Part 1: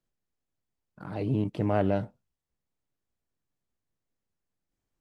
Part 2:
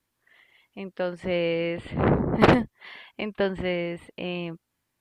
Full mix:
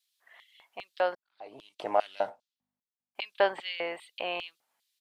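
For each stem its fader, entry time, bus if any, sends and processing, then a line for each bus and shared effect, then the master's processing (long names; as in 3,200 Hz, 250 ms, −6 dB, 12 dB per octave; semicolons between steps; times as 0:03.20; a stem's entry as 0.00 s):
+1.5 dB, 0.25 s, no send, low-pass that shuts in the quiet parts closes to 2,900 Hz, open at −26.5 dBFS; mains hum 50 Hz, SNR 23 dB; automatic ducking −22 dB, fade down 0.65 s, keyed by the second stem
+0.5 dB, 0.00 s, muted 0:01.15–0:03.15, no send, sub-octave generator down 2 octaves, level −4 dB; tape wow and flutter 16 cents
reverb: not used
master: auto-filter high-pass square 2.5 Hz 740–3,700 Hz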